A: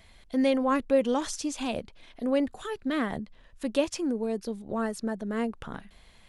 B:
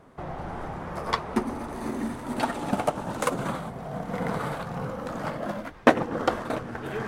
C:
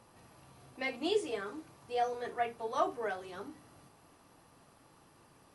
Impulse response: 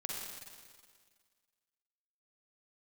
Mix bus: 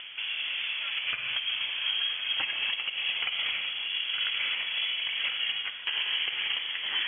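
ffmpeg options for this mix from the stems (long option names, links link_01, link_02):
-filter_complex "[0:a]volume=-15.5dB[link_01];[1:a]acompressor=mode=upward:threshold=-35dB:ratio=2.5,volume=0.5dB,asplit=2[link_02][link_03];[link_03]volume=-5dB[link_04];[2:a]volume=-8.5dB[link_05];[link_01][link_05]amix=inputs=2:normalize=0,alimiter=level_in=12dB:limit=-24dB:level=0:latency=1,volume=-12dB,volume=0dB[link_06];[3:a]atrim=start_sample=2205[link_07];[link_04][link_07]afir=irnorm=-1:irlink=0[link_08];[link_02][link_06][link_08]amix=inputs=3:normalize=0,lowshelf=frequency=130:gain=-11.5,lowpass=frequency=3000:width_type=q:width=0.5098,lowpass=frequency=3000:width_type=q:width=0.6013,lowpass=frequency=3000:width_type=q:width=0.9,lowpass=frequency=3000:width_type=q:width=2.563,afreqshift=-3500,alimiter=limit=-19.5dB:level=0:latency=1:release=161"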